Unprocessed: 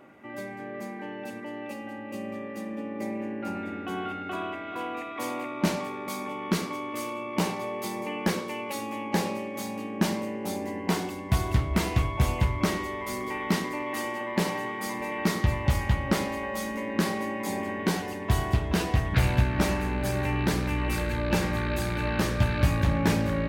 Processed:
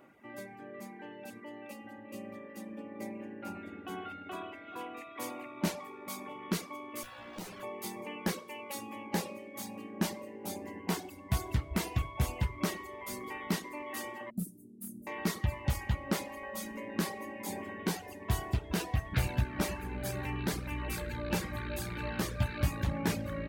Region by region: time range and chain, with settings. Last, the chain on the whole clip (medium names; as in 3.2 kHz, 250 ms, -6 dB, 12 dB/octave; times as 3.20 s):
7.03–7.63 s: comb filter that takes the minimum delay 9.7 ms + compression 3:1, threshold -33 dBFS
14.30–15.07 s: Chebyshev band-stop 220–10000 Hz, order 3 + overdrive pedal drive 18 dB, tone 2.9 kHz, clips at -17.5 dBFS
whole clip: reverb removal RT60 0.92 s; treble shelf 8.2 kHz +7.5 dB; trim -6.5 dB